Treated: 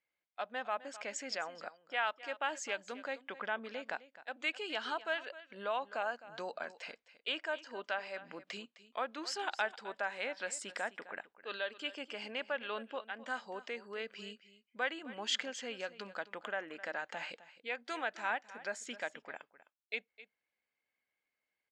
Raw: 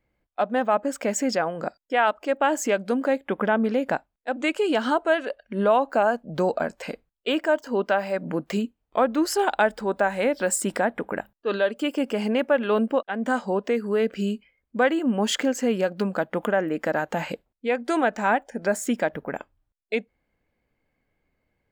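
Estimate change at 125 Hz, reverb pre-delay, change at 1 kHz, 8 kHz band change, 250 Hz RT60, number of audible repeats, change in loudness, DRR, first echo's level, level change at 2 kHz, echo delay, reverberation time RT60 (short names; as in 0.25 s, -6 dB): under -25 dB, none, -14.5 dB, -14.0 dB, none, 1, -15.0 dB, none, -16.5 dB, -9.5 dB, 0.259 s, none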